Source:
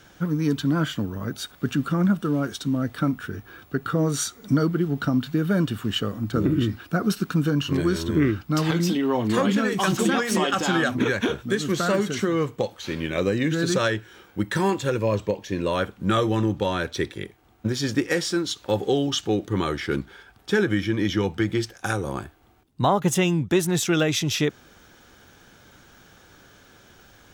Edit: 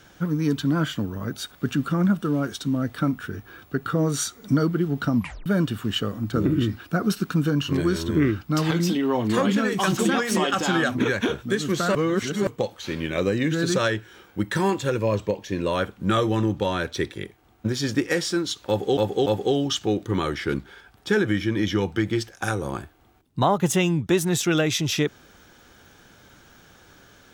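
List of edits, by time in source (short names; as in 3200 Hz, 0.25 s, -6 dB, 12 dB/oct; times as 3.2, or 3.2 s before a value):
5.15 tape stop 0.31 s
11.95–12.47 reverse
18.68–18.97 loop, 3 plays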